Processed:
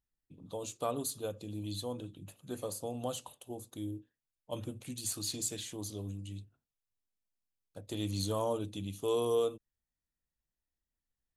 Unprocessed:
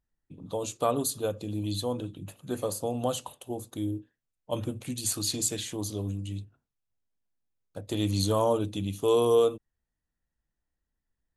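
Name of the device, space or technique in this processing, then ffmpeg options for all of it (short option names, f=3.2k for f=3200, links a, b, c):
exciter from parts: -filter_complex "[0:a]asplit=2[a][b];[b]highpass=2.1k,asoftclip=type=tanh:threshold=-36dB,volume=-7dB[c];[a][c]amix=inputs=2:normalize=0,volume=-8dB"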